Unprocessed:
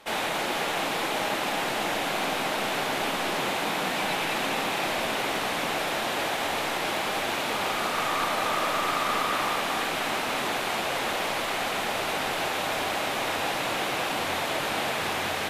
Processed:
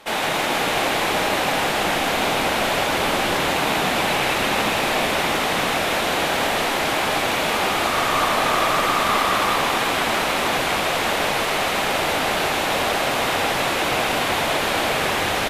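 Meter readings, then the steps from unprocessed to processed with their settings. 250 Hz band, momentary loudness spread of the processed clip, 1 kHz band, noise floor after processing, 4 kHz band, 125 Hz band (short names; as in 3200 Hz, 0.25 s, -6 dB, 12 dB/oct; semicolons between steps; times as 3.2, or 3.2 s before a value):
+7.5 dB, 2 LU, +7.0 dB, -22 dBFS, +7.0 dB, +9.5 dB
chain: frequency-shifting echo 0.159 s, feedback 59%, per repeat -63 Hz, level -5 dB; gain +5.5 dB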